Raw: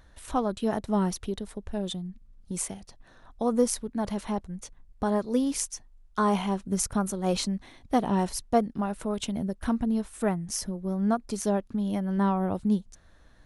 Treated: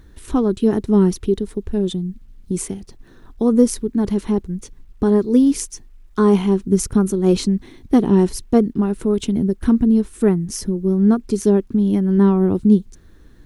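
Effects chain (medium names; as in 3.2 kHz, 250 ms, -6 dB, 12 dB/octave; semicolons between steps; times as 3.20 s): resonant low shelf 490 Hz +7 dB, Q 3; word length cut 12-bit, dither none; trim +3.5 dB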